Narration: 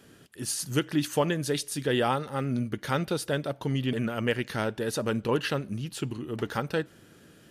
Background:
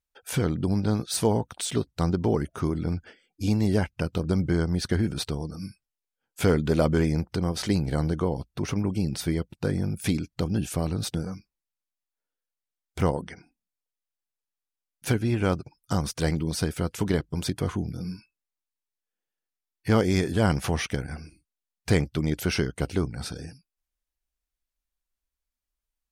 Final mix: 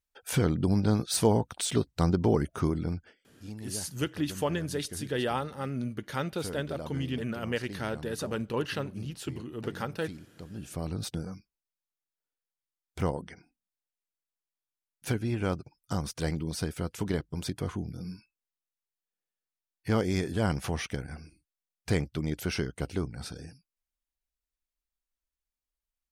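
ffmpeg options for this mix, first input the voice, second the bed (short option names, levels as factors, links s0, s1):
-filter_complex "[0:a]adelay=3250,volume=0.596[s0];[1:a]volume=3.98,afade=t=out:st=2.62:d=0.69:silence=0.133352,afade=t=in:st=10.5:d=0.44:silence=0.237137[s1];[s0][s1]amix=inputs=2:normalize=0"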